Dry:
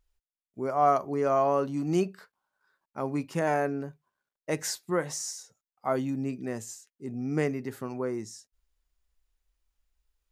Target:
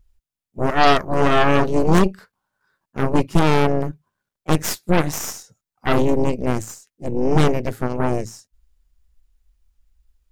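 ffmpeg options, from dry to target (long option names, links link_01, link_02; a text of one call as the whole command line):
ffmpeg -i in.wav -filter_complex "[0:a]bass=frequency=250:gain=12,treble=frequency=4000:gain=1,asplit=2[link_01][link_02];[link_02]asetrate=52444,aresample=44100,atempo=0.840896,volume=-17dB[link_03];[link_01][link_03]amix=inputs=2:normalize=0,aeval=exprs='0.355*(cos(1*acos(clip(val(0)/0.355,-1,1)))-cos(1*PI/2))+0.112*(cos(8*acos(clip(val(0)/0.355,-1,1)))-cos(8*PI/2))':channel_layout=same,volume=4dB" out.wav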